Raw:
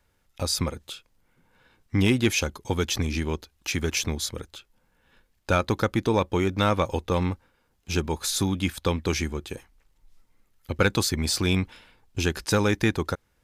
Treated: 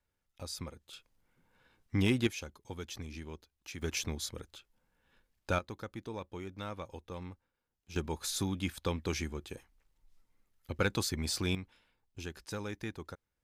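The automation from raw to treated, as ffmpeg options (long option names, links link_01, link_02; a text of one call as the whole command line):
ffmpeg -i in.wav -af "asetnsamples=nb_out_samples=441:pad=0,asendcmd='0.93 volume volume -7.5dB;2.27 volume volume -17dB;3.82 volume volume -9dB;5.59 volume volume -19dB;7.96 volume volume -9dB;11.55 volume volume -17.5dB',volume=-15.5dB" out.wav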